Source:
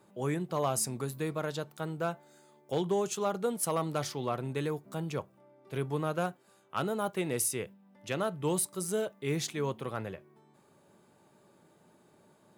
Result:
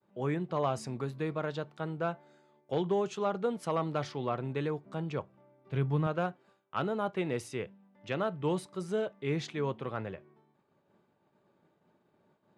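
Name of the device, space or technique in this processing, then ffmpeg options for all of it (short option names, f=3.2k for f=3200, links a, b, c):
hearing-loss simulation: -filter_complex "[0:a]lowpass=3.4k,agate=range=-33dB:threshold=-56dB:ratio=3:detection=peak,asettb=1/sr,asplit=3[a][b][c];[a]atrim=end=5.174[d];[b]atrim=start=5.17:end=6.07,asetpts=PTS-STARTPTS,afade=t=in:d=0.004:c=qsin,afade=t=out:st=0.896:d=0.004:c=qsin,asubboost=boost=9.5:cutoff=210[e];[c]atrim=start=6.066[f];[d][e]acrossfade=d=0.004:c1=hsin:c2=qsin[g];[g][f]acrossfade=d=0.004:c1=qsin:c2=hsin"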